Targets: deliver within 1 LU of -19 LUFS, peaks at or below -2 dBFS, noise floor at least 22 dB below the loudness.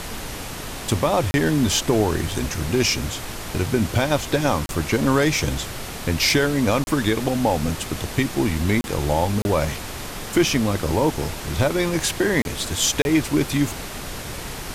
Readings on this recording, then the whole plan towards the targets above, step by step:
dropouts 7; longest dropout 31 ms; noise floor -33 dBFS; noise floor target -44 dBFS; loudness -22.0 LUFS; peak -7.0 dBFS; loudness target -19.0 LUFS
-> interpolate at 1.31/4.66/6.84/8.81/9.42/12.42/13.02, 31 ms; noise print and reduce 11 dB; gain +3 dB

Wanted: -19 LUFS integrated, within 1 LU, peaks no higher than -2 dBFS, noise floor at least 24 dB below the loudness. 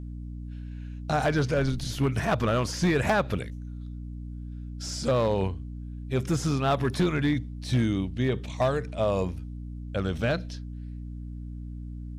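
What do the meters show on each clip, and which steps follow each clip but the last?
clipped 0.9%; flat tops at -17.5 dBFS; hum 60 Hz; harmonics up to 300 Hz; hum level -35 dBFS; loudness -27.5 LUFS; peak -17.5 dBFS; loudness target -19.0 LUFS
-> clip repair -17.5 dBFS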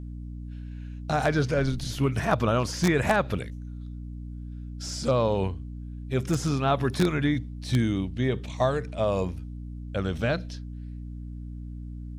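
clipped 0.0%; hum 60 Hz; harmonics up to 300 Hz; hum level -35 dBFS
-> notches 60/120/180/240/300 Hz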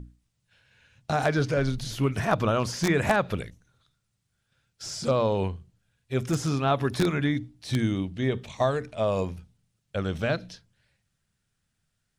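hum none; loudness -27.5 LUFS; peak -8.5 dBFS; loudness target -19.0 LUFS
-> gain +8.5 dB; limiter -2 dBFS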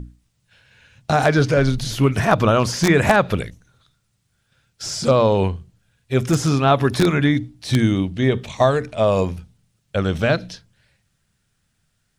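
loudness -19.0 LUFS; peak -2.0 dBFS; noise floor -69 dBFS

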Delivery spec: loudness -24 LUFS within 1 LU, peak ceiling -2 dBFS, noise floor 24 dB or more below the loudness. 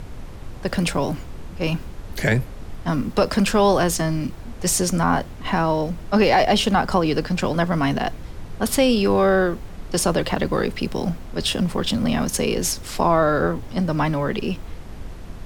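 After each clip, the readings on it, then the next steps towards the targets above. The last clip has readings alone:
noise floor -37 dBFS; noise floor target -46 dBFS; loudness -21.5 LUFS; peak -4.0 dBFS; loudness target -24.0 LUFS
-> noise print and reduce 9 dB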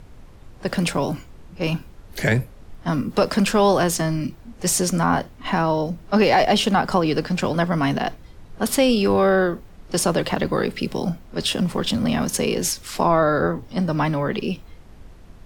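noise floor -45 dBFS; noise floor target -46 dBFS
-> noise print and reduce 6 dB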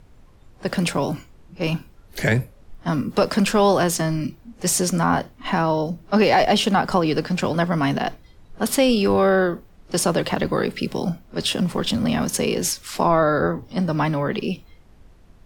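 noise floor -50 dBFS; loudness -21.5 LUFS; peak -4.0 dBFS; loudness target -24.0 LUFS
-> gain -2.5 dB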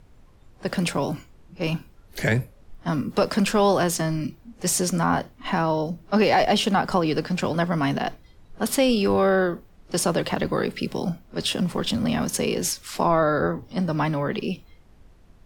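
loudness -24.0 LUFS; peak -6.5 dBFS; noise floor -53 dBFS

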